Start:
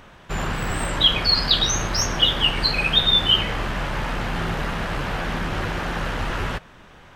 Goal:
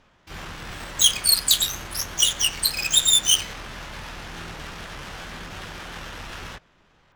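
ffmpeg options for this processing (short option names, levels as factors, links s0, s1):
-filter_complex "[0:a]adynamicsmooth=sensitivity=1.5:basefreq=1400,asplit=2[s0][s1];[s1]asetrate=88200,aresample=44100,atempo=0.5,volume=0.398[s2];[s0][s2]amix=inputs=2:normalize=0,crystalizer=i=7.5:c=0,volume=0.2"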